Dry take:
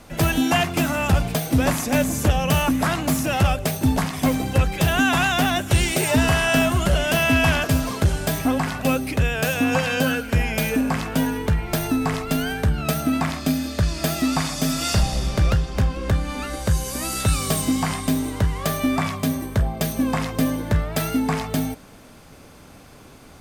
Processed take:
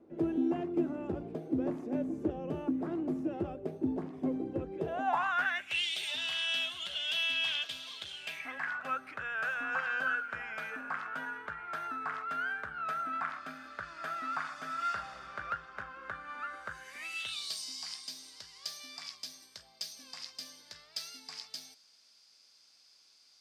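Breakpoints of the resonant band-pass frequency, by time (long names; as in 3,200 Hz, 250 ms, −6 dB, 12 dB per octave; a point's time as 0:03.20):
resonant band-pass, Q 5.8
0:04.77 350 Hz
0:05.19 970 Hz
0:05.86 3,400 Hz
0:08.10 3,400 Hz
0:08.77 1,400 Hz
0:16.70 1,400 Hz
0:17.58 4,900 Hz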